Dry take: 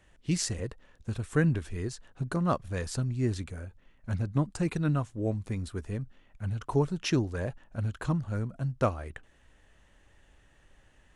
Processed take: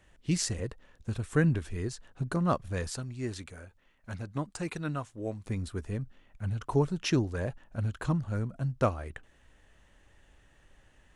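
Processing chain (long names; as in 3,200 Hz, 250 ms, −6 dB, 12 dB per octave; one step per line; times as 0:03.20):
0:02.89–0:05.46: low-shelf EQ 330 Hz −10 dB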